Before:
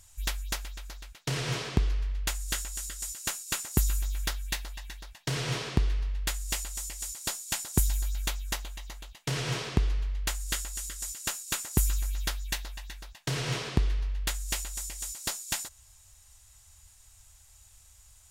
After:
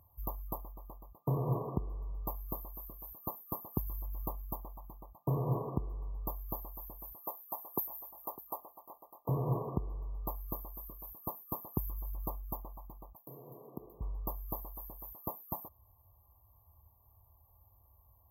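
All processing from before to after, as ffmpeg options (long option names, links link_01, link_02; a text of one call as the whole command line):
ffmpeg -i in.wav -filter_complex "[0:a]asettb=1/sr,asplit=3[link_01][link_02][link_03];[link_01]atrim=end=7.194[link_04];[link_02]atrim=start=7.19:end=9.29,asetpts=PTS-STARTPTS,afade=type=in:duration=0.004:curve=qsin,afade=type=out:start_time=2.096:duration=0.004:curve=qsin,highpass=460,aecho=1:1:603:0.15,atrim=end_sample=92610[link_05];[link_03]atrim=start=9.286[link_06];[link_04][link_05]acrossfade=duration=0.004:curve1=hsin:curve2=qsin[link_07];[link_07][link_06]acrossfade=duration=0.004:curve1=qsin:curve2=hsin,asettb=1/sr,asplit=3[link_08][link_09][link_10];[link_08]atrim=end=13.164[link_11];[link_09]atrim=start=13.16:end=14.01,asetpts=PTS-STARTPTS,afade=type=in:duration=0.004:curve=qsin,afade=type=out:start_time=0.846:duration=0.004:curve=qsin,highpass=240,highshelf=frequency=1700:width_type=q:width=3:gain=13,acompressor=threshold=-32dB:ratio=4:attack=3.2:release=140:knee=1:detection=peak[link_12];[link_10]atrim=start=14.006[link_13];[link_11][link_12]acrossfade=duration=0.004:curve1=hsin:curve2=qsin[link_14];[link_14][link_13]acrossfade=duration=0.004:curve1=qsin:curve2=hsin,highpass=76,afftfilt=real='re*(1-between(b*sr/4096,1200,12000))':imag='im*(1-between(b*sr/4096,1200,12000))':win_size=4096:overlap=0.75,alimiter=limit=-20.5dB:level=0:latency=1:release=442,volume=1dB" out.wav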